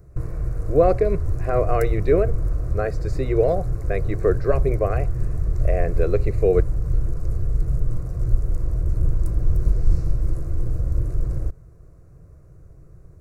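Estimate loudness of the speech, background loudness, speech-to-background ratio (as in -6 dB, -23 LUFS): -23.5 LUFS, -26.5 LUFS, 3.0 dB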